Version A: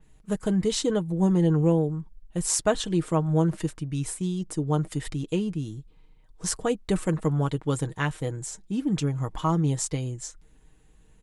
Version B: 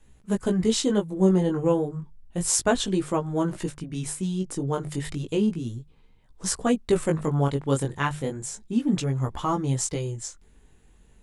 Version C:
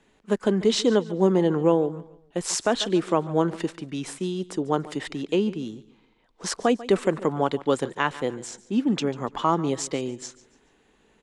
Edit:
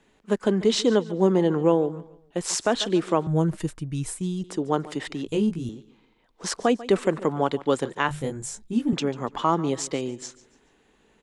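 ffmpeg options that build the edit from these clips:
-filter_complex "[1:a]asplit=2[a][b];[2:a]asplit=4[c][d][e][f];[c]atrim=end=3.272[g];[0:a]atrim=start=3.268:end=4.442[h];[d]atrim=start=4.438:end=5.262[i];[a]atrim=start=5.258:end=5.692[j];[e]atrim=start=5.688:end=8.092[k];[b]atrim=start=8.088:end=8.932[l];[f]atrim=start=8.928[m];[g][h]acrossfade=d=0.004:c1=hsin:c2=hsin[n];[n][i]acrossfade=d=0.004:c1=hsin:c2=hsin[o];[o][j]acrossfade=d=0.004:c1=hsin:c2=hsin[p];[p][k]acrossfade=d=0.004:c1=hsin:c2=hsin[q];[q][l]acrossfade=d=0.004:c1=hsin:c2=hsin[r];[r][m]acrossfade=d=0.004:c1=hsin:c2=hsin"

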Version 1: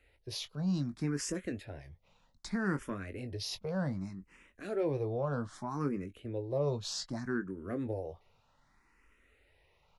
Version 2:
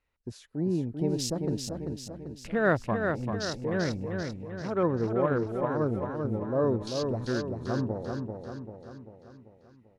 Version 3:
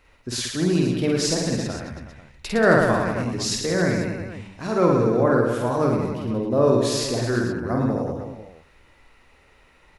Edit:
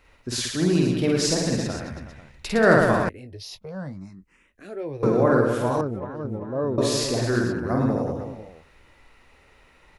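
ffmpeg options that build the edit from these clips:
-filter_complex "[2:a]asplit=3[a][b][c];[a]atrim=end=3.092[d];[0:a]atrim=start=3.088:end=5.032[e];[b]atrim=start=5.028:end=5.812[f];[1:a]atrim=start=5.808:end=6.782[g];[c]atrim=start=6.778[h];[d][e]acrossfade=d=0.004:c1=hsin:c2=hsin[i];[i][f]acrossfade=d=0.004:c1=hsin:c2=hsin[j];[j][g]acrossfade=d=0.004:c1=hsin:c2=hsin[k];[k][h]acrossfade=d=0.004:c1=hsin:c2=hsin"

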